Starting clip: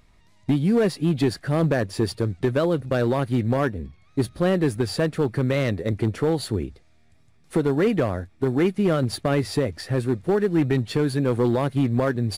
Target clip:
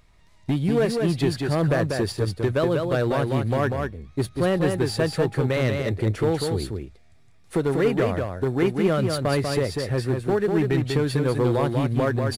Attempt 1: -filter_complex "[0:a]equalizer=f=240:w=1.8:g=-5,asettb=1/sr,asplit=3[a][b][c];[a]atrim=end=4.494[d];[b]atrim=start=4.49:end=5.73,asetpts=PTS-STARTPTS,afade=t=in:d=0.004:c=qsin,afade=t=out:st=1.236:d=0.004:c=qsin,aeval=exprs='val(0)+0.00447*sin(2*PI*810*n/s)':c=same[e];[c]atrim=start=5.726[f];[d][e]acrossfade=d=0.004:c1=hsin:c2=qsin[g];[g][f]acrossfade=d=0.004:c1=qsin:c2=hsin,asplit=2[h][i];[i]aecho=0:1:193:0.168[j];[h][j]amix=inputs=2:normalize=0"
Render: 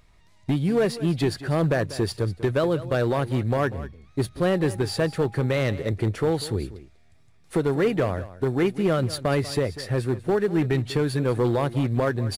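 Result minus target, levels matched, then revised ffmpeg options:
echo-to-direct -11 dB
-filter_complex "[0:a]equalizer=f=240:w=1.8:g=-5,asettb=1/sr,asplit=3[a][b][c];[a]atrim=end=4.494[d];[b]atrim=start=4.49:end=5.73,asetpts=PTS-STARTPTS,afade=t=in:d=0.004:c=qsin,afade=t=out:st=1.236:d=0.004:c=qsin,aeval=exprs='val(0)+0.00447*sin(2*PI*810*n/s)':c=same[e];[c]atrim=start=5.726[f];[d][e]acrossfade=d=0.004:c1=hsin:c2=qsin[g];[g][f]acrossfade=d=0.004:c1=qsin:c2=hsin,asplit=2[h][i];[i]aecho=0:1:193:0.596[j];[h][j]amix=inputs=2:normalize=0"

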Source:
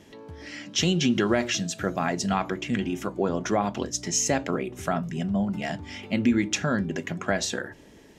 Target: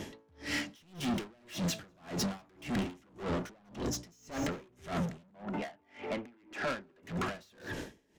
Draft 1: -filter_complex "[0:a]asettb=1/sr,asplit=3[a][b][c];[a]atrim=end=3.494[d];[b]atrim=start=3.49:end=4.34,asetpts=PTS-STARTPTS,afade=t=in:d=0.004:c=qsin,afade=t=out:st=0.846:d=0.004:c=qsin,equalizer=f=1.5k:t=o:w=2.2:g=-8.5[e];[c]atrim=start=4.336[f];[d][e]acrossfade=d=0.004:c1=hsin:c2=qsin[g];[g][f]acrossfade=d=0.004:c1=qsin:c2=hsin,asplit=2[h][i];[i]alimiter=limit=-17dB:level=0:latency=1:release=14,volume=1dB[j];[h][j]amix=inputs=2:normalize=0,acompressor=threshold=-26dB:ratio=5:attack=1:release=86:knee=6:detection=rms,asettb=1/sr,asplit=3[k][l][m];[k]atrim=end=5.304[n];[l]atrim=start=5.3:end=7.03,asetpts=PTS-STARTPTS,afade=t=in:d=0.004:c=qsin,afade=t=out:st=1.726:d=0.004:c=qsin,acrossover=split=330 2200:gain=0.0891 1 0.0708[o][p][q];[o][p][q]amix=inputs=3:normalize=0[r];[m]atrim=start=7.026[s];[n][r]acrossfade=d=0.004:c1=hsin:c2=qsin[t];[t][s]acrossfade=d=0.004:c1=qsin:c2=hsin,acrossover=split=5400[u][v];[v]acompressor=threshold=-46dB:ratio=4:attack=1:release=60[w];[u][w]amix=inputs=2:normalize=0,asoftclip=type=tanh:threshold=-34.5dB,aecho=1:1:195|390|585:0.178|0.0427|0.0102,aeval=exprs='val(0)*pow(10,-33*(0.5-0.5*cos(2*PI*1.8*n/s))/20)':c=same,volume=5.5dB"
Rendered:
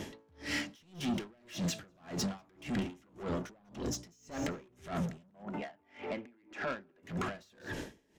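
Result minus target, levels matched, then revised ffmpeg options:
compressor: peak gain reduction +7 dB
-filter_complex "[0:a]asettb=1/sr,asplit=3[a][b][c];[a]atrim=end=3.494[d];[b]atrim=start=3.49:end=4.34,asetpts=PTS-STARTPTS,afade=t=in:d=0.004:c=qsin,afade=t=out:st=0.846:d=0.004:c=qsin,equalizer=f=1.5k:t=o:w=2.2:g=-8.5[e];[c]atrim=start=4.336[f];[d][e]acrossfade=d=0.004:c1=hsin:c2=qsin[g];[g][f]acrossfade=d=0.004:c1=qsin:c2=hsin,asplit=2[h][i];[i]alimiter=limit=-17dB:level=0:latency=1:release=14,volume=1dB[j];[h][j]amix=inputs=2:normalize=0,acompressor=threshold=-17.5dB:ratio=5:attack=1:release=86:knee=6:detection=rms,asettb=1/sr,asplit=3[k][l][m];[k]atrim=end=5.304[n];[l]atrim=start=5.3:end=7.03,asetpts=PTS-STARTPTS,afade=t=in:d=0.004:c=qsin,afade=t=out:st=1.726:d=0.004:c=qsin,acrossover=split=330 2200:gain=0.0891 1 0.0708[o][p][q];[o][p][q]amix=inputs=3:normalize=0[r];[m]atrim=start=7.026[s];[n][r]acrossfade=d=0.004:c1=hsin:c2=qsin[t];[t][s]acrossfade=d=0.004:c1=qsin:c2=hsin,acrossover=split=5400[u][v];[v]acompressor=threshold=-46dB:ratio=4:attack=1:release=60[w];[u][w]amix=inputs=2:normalize=0,asoftclip=type=tanh:threshold=-34.5dB,aecho=1:1:195|390|585:0.178|0.0427|0.0102,aeval=exprs='val(0)*pow(10,-33*(0.5-0.5*cos(2*PI*1.8*n/s))/20)':c=same,volume=5.5dB"

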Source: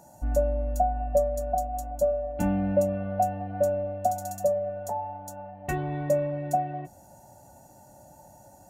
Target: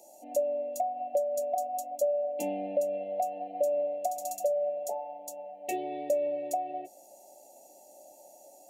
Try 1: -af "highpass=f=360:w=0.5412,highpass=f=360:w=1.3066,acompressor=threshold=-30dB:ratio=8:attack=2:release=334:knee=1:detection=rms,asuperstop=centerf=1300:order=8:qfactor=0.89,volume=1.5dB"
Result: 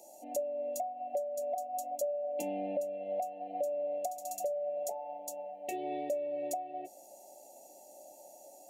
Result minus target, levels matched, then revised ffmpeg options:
compressor: peak gain reduction +6.5 dB
-af "highpass=f=360:w=0.5412,highpass=f=360:w=1.3066,acompressor=threshold=-22.5dB:ratio=8:attack=2:release=334:knee=1:detection=rms,asuperstop=centerf=1300:order=8:qfactor=0.89,volume=1.5dB"

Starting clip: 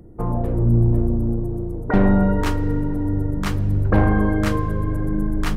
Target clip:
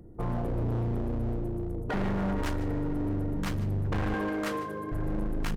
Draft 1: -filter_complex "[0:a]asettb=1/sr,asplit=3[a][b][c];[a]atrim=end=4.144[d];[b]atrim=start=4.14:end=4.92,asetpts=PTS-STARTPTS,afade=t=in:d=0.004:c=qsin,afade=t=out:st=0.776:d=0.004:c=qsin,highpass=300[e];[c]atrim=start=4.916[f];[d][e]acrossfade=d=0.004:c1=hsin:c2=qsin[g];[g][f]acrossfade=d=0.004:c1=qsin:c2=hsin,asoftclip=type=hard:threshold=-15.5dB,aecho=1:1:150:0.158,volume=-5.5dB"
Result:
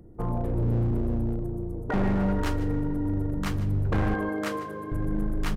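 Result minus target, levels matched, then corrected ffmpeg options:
hard clip: distortion -5 dB
-filter_complex "[0:a]asettb=1/sr,asplit=3[a][b][c];[a]atrim=end=4.144[d];[b]atrim=start=4.14:end=4.92,asetpts=PTS-STARTPTS,afade=t=in:d=0.004:c=qsin,afade=t=out:st=0.776:d=0.004:c=qsin,highpass=300[e];[c]atrim=start=4.916[f];[d][e]acrossfade=d=0.004:c1=hsin:c2=qsin[g];[g][f]acrossfade=d=0.004:c1=qsin:c2=hsin,asoftclip=type=hard:threshold=-21.5dB,aecho=1:1:150:0.158,volume=-5.5dB"

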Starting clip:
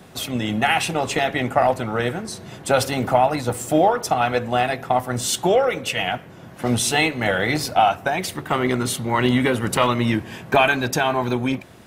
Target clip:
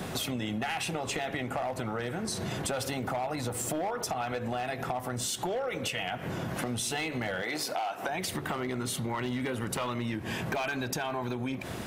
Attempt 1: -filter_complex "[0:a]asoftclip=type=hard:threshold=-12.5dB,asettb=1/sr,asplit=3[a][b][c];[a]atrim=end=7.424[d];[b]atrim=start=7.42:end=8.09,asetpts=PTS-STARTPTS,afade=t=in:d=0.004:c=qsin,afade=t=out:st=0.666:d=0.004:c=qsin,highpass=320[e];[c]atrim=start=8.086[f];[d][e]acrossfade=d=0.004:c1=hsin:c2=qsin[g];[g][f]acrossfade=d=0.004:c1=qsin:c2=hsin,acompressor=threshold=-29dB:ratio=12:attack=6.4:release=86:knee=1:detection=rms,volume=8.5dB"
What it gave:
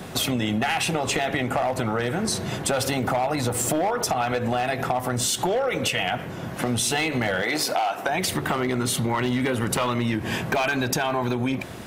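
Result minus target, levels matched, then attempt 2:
compressor: peak gain reduction -8.5 dB
-filter_complex "[0:a]asoftclip=type=hard:threshold=-12.5dB,asettb=1/sr,asplit=3[a][b][c];[a]atrim=end=7.424[d];[b]atrim=start=7.42:end=8.09,asetpts=PTS-STARTPTS,afade=t=in:d=0.004:c=qsin,afade=t=out:st=0.666:d=0.004:c=qsin,highpass=320[e];[c]atrim=start=8.086[f];[d][e]acrossfade=d=0.004:c1=hsin:c2=qsin[g];[g][f]acrossfade=d=0.004:c1=qsin:c2=hsin,acompressor=threshold=-38.5dB:ratio=12:attack=6.4:release=86:knee=1:detection=rms,volume=8.5dB"

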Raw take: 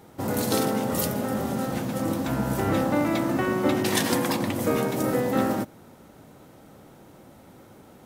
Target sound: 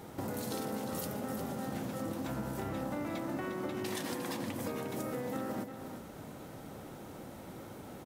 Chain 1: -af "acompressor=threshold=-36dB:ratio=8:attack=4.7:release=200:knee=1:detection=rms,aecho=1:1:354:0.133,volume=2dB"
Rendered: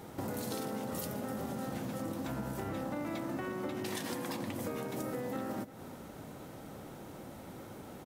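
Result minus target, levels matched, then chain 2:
echo-to-direct -9 dB
-af "acompressor=threshold=-36dB:ratio=8:attack=4.7:release=200:knee=1:detection=rms,aecho=1:1:354:0.376,volume=2dB"

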